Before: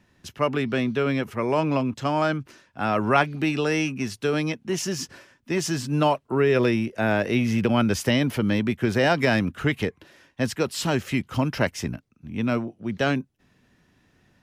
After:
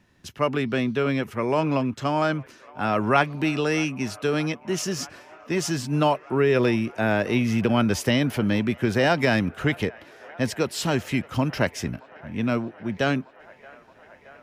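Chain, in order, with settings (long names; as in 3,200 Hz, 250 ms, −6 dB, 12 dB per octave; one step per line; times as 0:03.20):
delay with a band-pass on its return 623 ms, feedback 82%, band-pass 1,100 Hz, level −21 dB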